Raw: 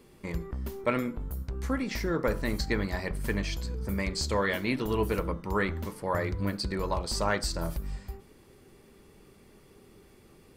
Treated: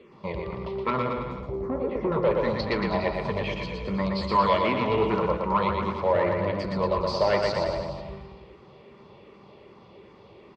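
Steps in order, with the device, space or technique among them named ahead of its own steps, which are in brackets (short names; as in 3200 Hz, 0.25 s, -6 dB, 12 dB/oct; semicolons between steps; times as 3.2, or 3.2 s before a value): 1.4–2.12 EQ curve 180 Hz 0 dB, 380 Hz +8 dB, 2900 Hz -20 dB; barber-pole phaser into a guitar amplifier (endless phaser -2.6 Hz; soft clip -27 dBFS, distortion -14 dB; speaker cabinet 110–4000 Hz, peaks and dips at 270 Hz -8 dB, 580 Hz +6 dB, 1000 Hz +9 dB, 1600 Hz -8 dB); bouncing-ball echo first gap 0.12 s, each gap 0.9×, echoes 5; gain +8 dB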